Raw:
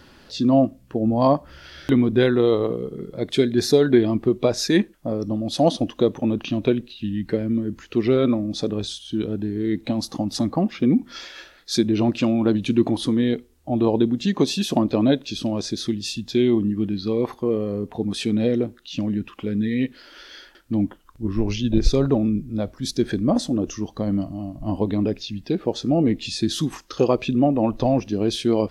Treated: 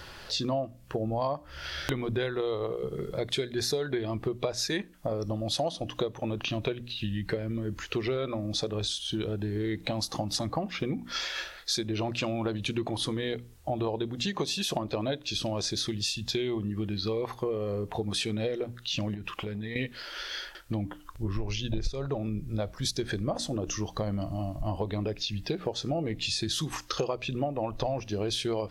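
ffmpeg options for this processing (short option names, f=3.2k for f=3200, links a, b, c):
-filter_complex "[0:a]asettb=1/sr,asplit=3[a][b][c];[a]atrim=end=19.144[d];[b]atrim=start=19.14:end=19.76,asetpts=PTS-STARTPTS,afade=t=in:d=0.004:c=qsin,afade=t=out:st=0.616:d=0.004:c=qsin,acompressor=threshold=-31dB:ratio=5:attack=3.2:release=140:knee=1:detection=peak[e];[c]atrim=start=19.756[f];[d][e]acrossfade=d=0.004:c1=hsin:c2=qsin[g];[g][f]acrossfade=d=0.004:c1=qsin:c2=hsin,equalizer=f=250:w=1.4:g=-14,bandreject=f=60:t=h:w=6,bandreject=f=120:t=h:w=6,bandreject=f=180:t=h:w=6,bandreject=f=240:t=h:w=6,bandreject=f=300:t=h:w=6,acompressor=threshold=-34dB:ratio=6,volume=6dB"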